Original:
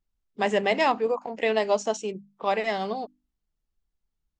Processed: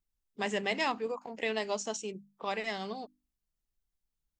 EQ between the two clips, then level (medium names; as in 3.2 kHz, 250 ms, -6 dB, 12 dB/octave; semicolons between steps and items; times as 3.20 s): dynamic bell 630 Hz, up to -6 dB, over -35 dBFS, Q 1.1; treble shelf 5.4 kHz +8 dB; -6.0 dB